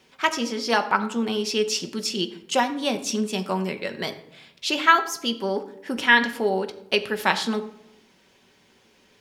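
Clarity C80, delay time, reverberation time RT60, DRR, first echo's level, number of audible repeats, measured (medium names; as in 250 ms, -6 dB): 15.5 dB, no echo, 0.80 s, 7.0 dB, no echo, no echo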